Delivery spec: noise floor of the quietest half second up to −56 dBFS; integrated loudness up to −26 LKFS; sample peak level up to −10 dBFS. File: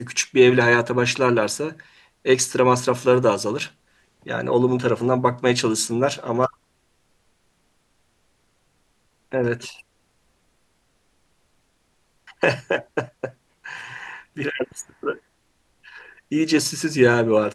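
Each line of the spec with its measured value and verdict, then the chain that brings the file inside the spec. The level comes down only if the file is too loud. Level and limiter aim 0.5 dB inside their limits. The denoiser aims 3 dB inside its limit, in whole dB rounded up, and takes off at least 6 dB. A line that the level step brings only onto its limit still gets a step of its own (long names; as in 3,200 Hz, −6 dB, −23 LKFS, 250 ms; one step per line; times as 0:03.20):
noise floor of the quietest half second −66 dBFS: in spec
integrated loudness −21.0 LKFS: out of spec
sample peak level −2.5 dBFS: out of spec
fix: level −5.5 dB
brickwall limiter −10.5 dBFS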